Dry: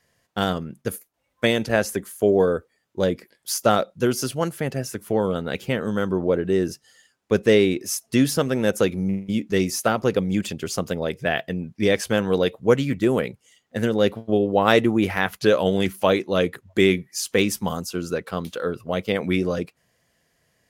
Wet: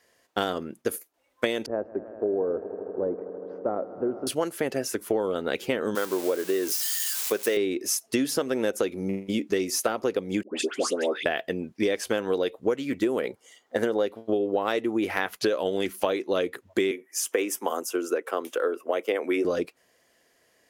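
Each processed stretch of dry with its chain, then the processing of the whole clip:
0:01.66–0:04.27: Bessel low-pass filter 750 Hz, order 4 + downward compressor 1.5 to 1, threshold −39 dBFS + echo that builds up and dies away 80 ms, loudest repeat 5, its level −18 dB
0:05.95–0:07.57: spike at every zero crossing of −22.5 dBFS + high-pass filter 540 Hz 6 dB per octave
0:10.43–0:11.26: elliptic band-pass filter 250–9,600 Hz, stop band 50 dB + all-pass dispersion highs, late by 146 ms, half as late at 1,300 Hz
0:13.24–0:14.06: parametric band 820 Hz +7 dB 1.9 octaves + notch filter 2,600 Hz, Q 8.5
0:16.91–0:19.45: high-pass filter 290 Hz 24 dB per octave + parametric band 4,200 Hz −15 dB 0.51 octaves
whole clip: low shelf with overshoot 220 Hz −11 dB, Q 1.5; downward compressor 10 to 1, threshold −24 dBFS; level +2.5 dB

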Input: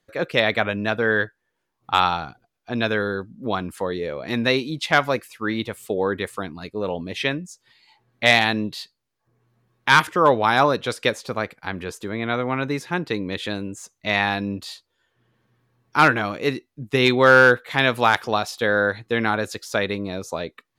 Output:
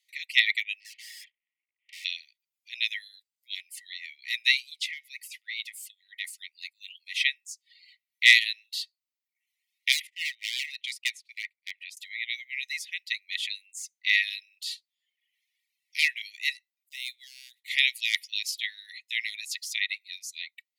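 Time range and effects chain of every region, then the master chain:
0:00.80–0:02.05: variable-slope delta modulation 16 kbit/s + high-pass with resonance 1,700 Hz, resonance Q 1.7 + tube saturation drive 37 dB, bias 0.7
0:04.70–0:06.25: high-pass with resonance 750 Hz, resonance Q 3 + downward compressor 3 to 1, threshold −29 dBFS
0:09.92–0:11.97: noise gate −37 dBFS, range −18 dB + bass and treble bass −2 dB, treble −8 dB + gain into a clipping stage and back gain 16 dB
0:16.89–0:17.68: running median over 5 samples + downward compressor 2 to 1, threshold −29 dBFS + parametric band 1,900 Hz −10 dB 1.8 octaves
whole clip: Chebyshev high-pass filter 1,900 Hz, order 10; reverb reduction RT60 0.74 s; level +2.5 dB

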